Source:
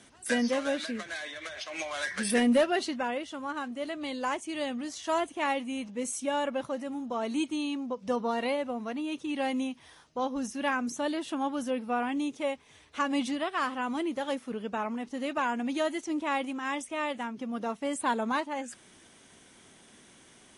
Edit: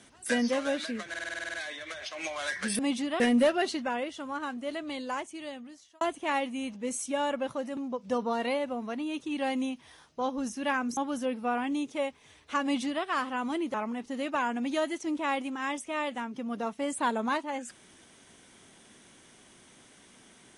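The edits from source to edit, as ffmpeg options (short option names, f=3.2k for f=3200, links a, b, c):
-filter_complex "[0:a]asplit=16[a][b][c][d][e][f][g][h][i][j][k][l][m][n][o][p];[a]atrim=end=1.142[q];[b]atrim=start=1.088:end=1.142[r];[c]atrim=start=1.088:end=1.142[s];[d]atrim=start=1.088:end=1.142[t];[e]atrim=start=1.088:end=1.142[u];[f]atrim=start=1.088:end=1.142[v];[g]atrim=start=1.088:end=1.142[w];[h]atrim=start=1.088:end=1.142[x];[i]atrim=start=1.088:end=1.142[y];[j]atrim=start=1.088:end=2.342[z];[k]atrim=start=13.078:end=13.492[aa];[l]atrim=start=2.338:end=5.15,asetpts=PTS-STARTPTS,afade=t=out:st=1.602:d=1.21[ab];[m]atrim=start=5.15:end=6.912,asetpts=PTS-STARTPTS,afade=t=in:d=0.004:c=hsin[ac];[n]atrim=start=7.748:end=10.952[ad];[o]atrim=start=11.418:end=14.192[ae];[p]atrim=start=14.768[af];[q][r]acrossfade=d=0.004:c1=hsin:c2=hsin[ag];[ag][s]acrossfade=d=0.004:c1=hsin:c2=hsin[ah];[ah][t]acrossfade=d=0.004:c1=hsin:c2=hsin[ai];[ai][u]acrossfade=d=0.004:c1=hsin:c2=hsin[aj];[aj][v]acrossfade=d=0.004:c1=hsin:c2=hsin[ak];[ak][w]acrossfade=d=0.004:c1=hsin:c2=hsin[al];[al][x]acrossfade=d=0.004:c1=hsin:c2=hsin[am];[am][y]acrossfade=d=0.004:c1=hsin:c2=hsin[an];[an][z]acrossfade=d=0.004:c1=hsin:c2=hsin[ao];[ao][aa]acrossfade=d=0.004:c1=hsin:c2=hsin[ap];[ab][ac]concat=n=2:v=0:a=1[aq];[ap][aq]acrossfade=d=0.004:c1=hsin:c2=hsin[ar];[ar][ad]acrossfade=d=0.004:c1=hsin:c2=hsin[as];[as][ae]acrossfade=d=0.004:c1=hsin:c2=hsin[at];[at][af]acrossfade=d=0.004:c1=hsin:c2=hsin"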